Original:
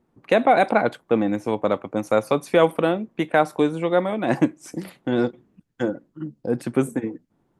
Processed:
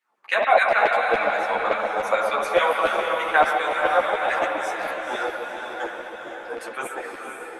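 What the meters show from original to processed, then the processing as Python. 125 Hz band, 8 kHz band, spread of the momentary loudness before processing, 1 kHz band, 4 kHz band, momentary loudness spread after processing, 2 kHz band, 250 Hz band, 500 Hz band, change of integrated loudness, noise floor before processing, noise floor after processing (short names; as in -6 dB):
under -20 dB, +1.0 dB, 12 LU, +3.5 dB, +4.0 dB, 14 LU, +7.0 dB, -16.0 dB, -2.0 dB, 0.0 dB, -69 dBFS, -38 dBFS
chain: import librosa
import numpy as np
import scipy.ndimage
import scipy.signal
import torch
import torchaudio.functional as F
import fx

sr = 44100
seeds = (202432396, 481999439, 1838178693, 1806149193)

y = fx.hum_notches(x, sr, base_hz=60, count=4)
y = fx.rev_spring(y, sr, rt60_s=2.4, pass_ms=(59,), chirp_ms=45, drr_db=2.0)
y = fx.filter_lfo_highpass(y, sr, shape='saw_down', hz=7.0, low_hz=630.0, high_hz=2300.0, q=2.1)
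y = fx.echo_diffused(y, sr, ms=481, feedback_pct=54, wet_db=-5.5)
y = fx.ensemble(y, sr)
y = y * 10.0 ** (2.5 / 20.0)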